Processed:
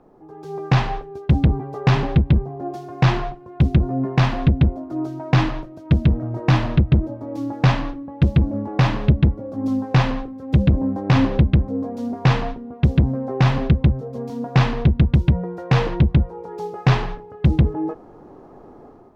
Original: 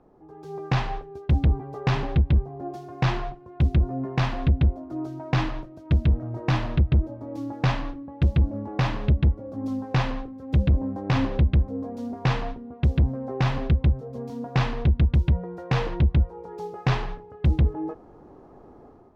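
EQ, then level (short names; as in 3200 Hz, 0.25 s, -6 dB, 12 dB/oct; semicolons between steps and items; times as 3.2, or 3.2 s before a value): bell 61 Hz -6.5 dB 1.3 oct; dynamic EQ 160 Hz, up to +4 dB, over -33 dBFS, Q 0.74; +5.5 dB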